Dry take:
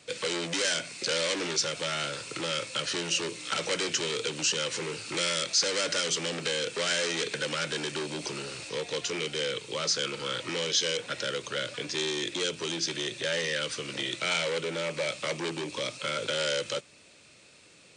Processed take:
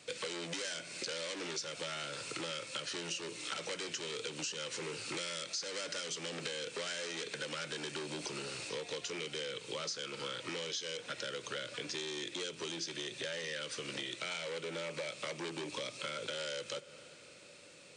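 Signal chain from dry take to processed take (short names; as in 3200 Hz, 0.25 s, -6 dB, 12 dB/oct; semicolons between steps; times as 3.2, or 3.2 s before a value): low shelf 94 Hz -6 dB; on a send at -21 dB: reverb RT60 5.2 s, pre-delay 48 ms; on the sum: compressor, threshold -36 dBFS, peak gain reduction 14 dB; gain -1.5 dB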